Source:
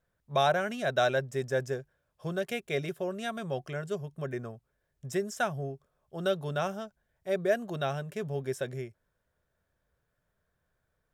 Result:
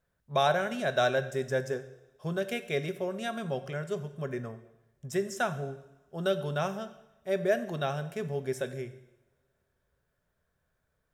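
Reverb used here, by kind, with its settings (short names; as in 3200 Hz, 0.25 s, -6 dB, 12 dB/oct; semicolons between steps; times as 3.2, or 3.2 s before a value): two-slope reverb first 0.87 s, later 3.2 s, from -28 dB, DRR 10 dB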